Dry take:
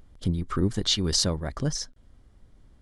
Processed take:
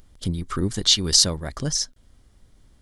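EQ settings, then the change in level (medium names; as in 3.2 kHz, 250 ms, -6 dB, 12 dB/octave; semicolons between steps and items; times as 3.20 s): treble shelf 2.8 kHz +10.5 dB; 0.0 dB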